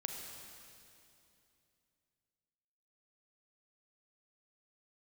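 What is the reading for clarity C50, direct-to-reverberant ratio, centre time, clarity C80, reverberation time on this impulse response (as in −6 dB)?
2.5 dB, 2.0 dB, 90 ms, 3.5 dB, 2.7 s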